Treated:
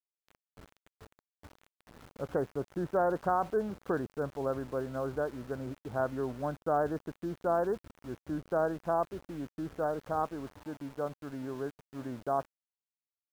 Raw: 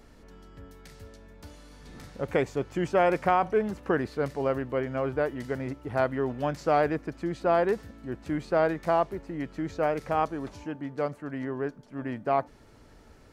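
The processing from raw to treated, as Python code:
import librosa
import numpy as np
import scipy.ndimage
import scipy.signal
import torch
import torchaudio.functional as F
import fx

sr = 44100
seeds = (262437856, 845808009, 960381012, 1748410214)

y = scipy.signal.sosfilt(scipy.signal.butter(12, 1600.0, 'lowpass', fs=sr, output='sos'), x)
y = np.where(np.abs(y) >= 10.0 ** (-41.5 / 20.0), y, 0.0)
y = F.gain(torch.from_numpy(y), -5.5).numpy()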